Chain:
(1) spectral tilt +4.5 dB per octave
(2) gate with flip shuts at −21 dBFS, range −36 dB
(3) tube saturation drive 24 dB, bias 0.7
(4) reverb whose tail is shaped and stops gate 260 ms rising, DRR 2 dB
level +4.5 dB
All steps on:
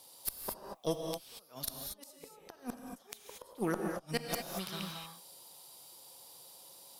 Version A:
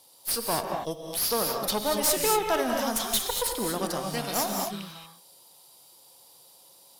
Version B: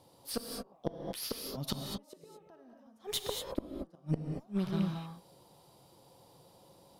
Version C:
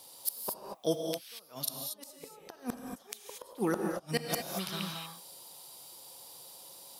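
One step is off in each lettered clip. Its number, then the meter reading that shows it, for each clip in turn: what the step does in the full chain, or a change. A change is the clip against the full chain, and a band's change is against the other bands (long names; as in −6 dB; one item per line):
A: 2, change in momentary loudness spread −6 LU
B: 1, 125 Hz band +9.0 dB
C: 3, change in integrated loudness +2.5 LU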